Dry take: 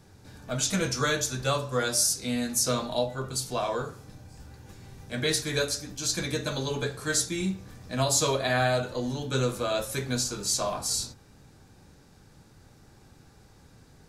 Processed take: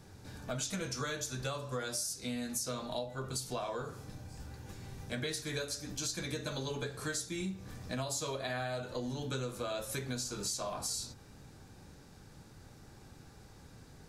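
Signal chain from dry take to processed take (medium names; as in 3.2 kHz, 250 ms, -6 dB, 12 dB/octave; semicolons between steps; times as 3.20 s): compression 6:1, threshold -35 dBFS, peak gain reduction 14 dB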